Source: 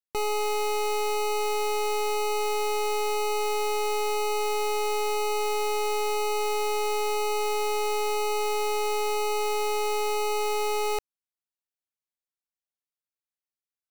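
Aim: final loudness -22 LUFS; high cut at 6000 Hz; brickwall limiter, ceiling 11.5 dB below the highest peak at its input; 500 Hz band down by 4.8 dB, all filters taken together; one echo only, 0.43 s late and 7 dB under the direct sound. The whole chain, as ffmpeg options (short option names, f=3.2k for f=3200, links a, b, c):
-af "lowpass=6k,equalizer=f=500:t=o:g=-6,alimiter=level_in=11dB:limit=-24dB:level=0:latency=1,volume=-11dB,aecho=1:1:430:0.447,volume=17dB"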